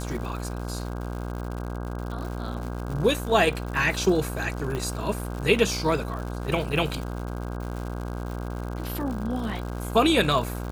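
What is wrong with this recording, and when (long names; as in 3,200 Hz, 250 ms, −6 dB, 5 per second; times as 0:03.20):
mains buzz 60 Hz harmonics 27 −32 dBFS
surface crackle 170 per second −33 dBFS
0:04.75: click −18 dBFS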